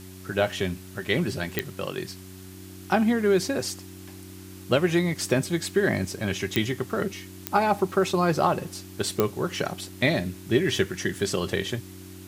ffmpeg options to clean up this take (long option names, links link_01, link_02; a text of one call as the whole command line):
ffmpeg -i in.wav -af "adeclick=threshold=4,bandreject=frequency=93.7:width_type=h:width=4,bandreject=frequency=187.4:width_type=h:width=4,bandreject=frequency=281.1:width_type=h:width=4,bandreject=frequency=374.8:width_type=h:width=4,bandreject=frequency=320:width=30,afftdn=noise_reduction=27:noise_floor=-43" out.wav